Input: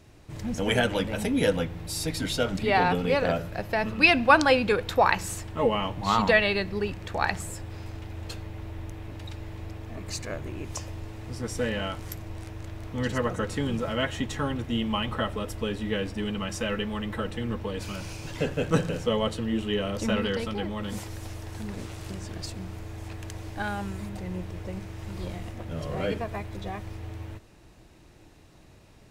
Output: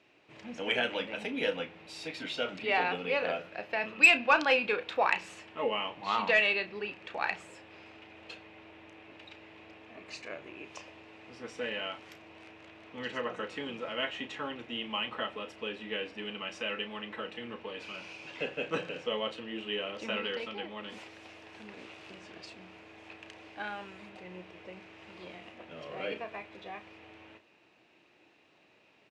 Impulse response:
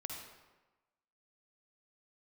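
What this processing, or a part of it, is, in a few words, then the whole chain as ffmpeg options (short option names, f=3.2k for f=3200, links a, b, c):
intercom: -filter_complex "[0:a]highpass=320,lowpass=4k,equalizer=f=2.6k:t=o:w=0.59:g=9.5,asoftclip=type=tanh:threshold=-3.5dB,asplit=2[a][b];[b]adelay=33,volume=-10.5dB[c];[a][c]amix=inputs=2:normalize=0,volume=-7dB"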